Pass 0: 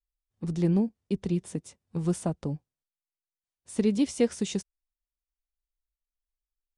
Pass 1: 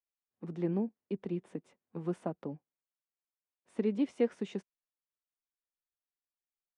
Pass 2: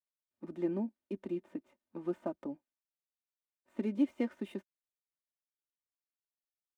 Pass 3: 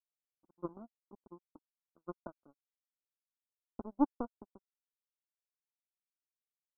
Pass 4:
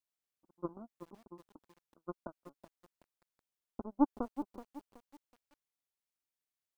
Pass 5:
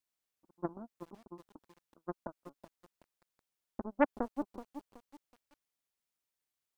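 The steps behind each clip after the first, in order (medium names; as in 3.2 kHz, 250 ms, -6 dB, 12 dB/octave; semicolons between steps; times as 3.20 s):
three-band isolator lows -24 dB, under 190 Hz, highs -22 dB, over 2.7 kHz; trim -4 dB
median filter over 9 samples; comb 3.3 ms, depth 74%; trim -3 dB
power-law waveshaper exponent 3; Chebyshev low-pass 1.5 kHz, order 10; trim +5 dB
bit-crushed delay 375 ms, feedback 35%, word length 9-bit, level -11 dB; trim +1 dB
loudspeaker Doppler distortion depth 0.72 ms; trim +2.5 dB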